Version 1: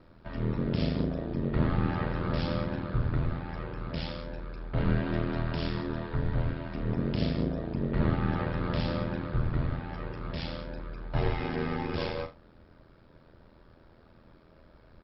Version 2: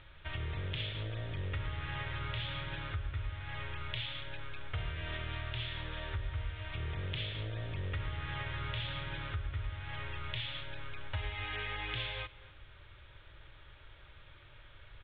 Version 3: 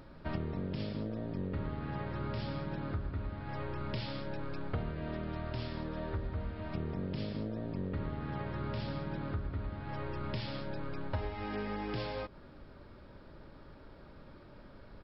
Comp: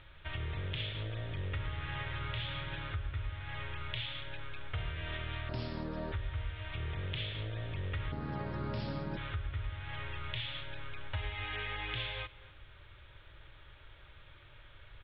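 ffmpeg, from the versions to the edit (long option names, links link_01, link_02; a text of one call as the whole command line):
ffmpeg -i take0.wav -i take1.wav -i take2.wav -filter_complex "[2:a]asplit=2[link_01][link_02];[1:a]asplit=3[link_03][link_04][link_05];[link_03]atrim=end=5.492[link_06];[link_01]atrim=start=5.488:end=6.122[link_07];[link_04]atrim=start=6.118:end=8.122[link_08];[link_02]atrim=start=8.118:end=9.172[link_09];[link_05]atrim=start=9.168[link_10];[link_06][link_07]acrossfade=duration=0.004:curve1=hsin:curve2=hsin[link_11];[link_11][link_08]acrossfade=duration=0.004:curve1=hsin:curve2=hsin[link_12];[link_12][link_09]acrossfade=duration=0.004:curve1=hsin:curve2=hsin[link_13];[link_13][link_10]acrossfade=duration=0.004:curve1=hsin:curve2=hsin" out.wav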